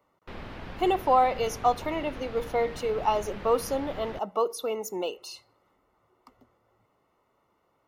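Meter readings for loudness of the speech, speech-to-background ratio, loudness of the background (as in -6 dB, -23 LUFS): -28.0 LUFS, 14.0 dB, -42.0 LUFS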